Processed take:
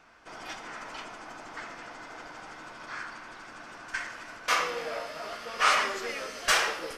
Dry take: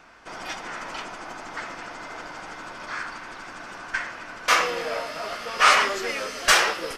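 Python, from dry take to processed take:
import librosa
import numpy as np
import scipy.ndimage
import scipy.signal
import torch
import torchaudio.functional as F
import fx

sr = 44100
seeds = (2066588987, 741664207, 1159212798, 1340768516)

y = fx.high_shelf(x, sr, hz=4800.0, db=8.5, at=(3.88, 4.37))
y = fx.rev_plate(y, sr, seeds[0], rt60_s=0.81, hf_ratio=0.75, predelay_ms=0, drr_db=9.0)
y = y * 10.0 ** (-7.0 / 20.0)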